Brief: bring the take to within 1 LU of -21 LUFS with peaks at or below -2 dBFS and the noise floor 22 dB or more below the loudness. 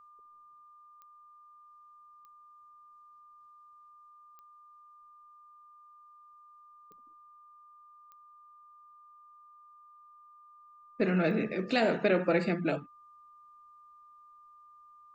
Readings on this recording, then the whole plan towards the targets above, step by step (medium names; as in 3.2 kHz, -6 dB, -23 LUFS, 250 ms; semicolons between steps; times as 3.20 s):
clicks found 6; steady tone 1.2 kHz; tone level -54 dBFS; loudness -29.0 LUFS; peak level -14.0 dBFS; loudness target -21.0 LUFS
-> de-click; band-stop 1.2 kHz, Q 30; trim +8 dB